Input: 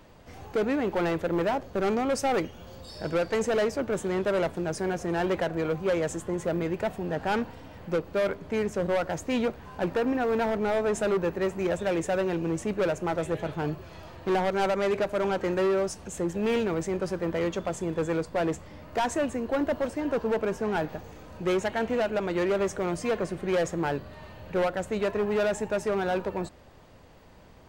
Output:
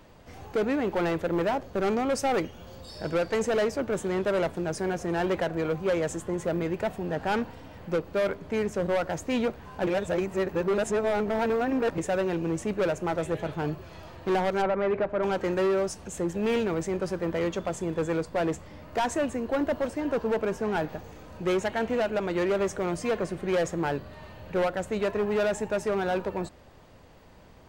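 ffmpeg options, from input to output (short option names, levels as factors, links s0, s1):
-filter_complex "[0:a]asplit=3[s0][s1][s2];[s0]afade=t=out:st=14.61:d=0.02[s3];[s1]lowpass=2000,afade=t=in:st=14.61:d=0.02,afade=t=out:st=15.22:d=0.02[s4];[s2]afade=t=in:st=15.22:d=0.02[s5];[s3][s4][s5]amix=inputs=3:normalize=0,asplit=3[s6][s7][s8];[s6]atrim=end=9.872[s9];[s7]atrim=start=9.868:end=11.982,asetpts=PTS-STARTPTS,areverse[s10];[s8]atrim=start=11.978[s11];[s9][s10]acrossfade=d=0.004:c1=hsin:c2=hsin[s12];[s12][s11]acrossfade=d=0.004:c1=hsin:c2=hsin"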